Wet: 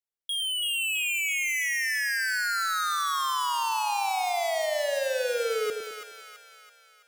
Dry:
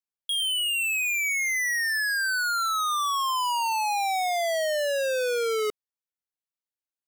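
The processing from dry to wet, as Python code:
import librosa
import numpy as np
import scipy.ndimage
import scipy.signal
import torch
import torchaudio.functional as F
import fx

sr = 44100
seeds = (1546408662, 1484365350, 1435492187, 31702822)

y = fx.echo_split(x, sr, split_hz=850.0, low_ms=104, high_ms=331, feedback_pct=52, wet_db=-6.0)
y = F.gain(torch.from_numpy(y), -3.0).numpy()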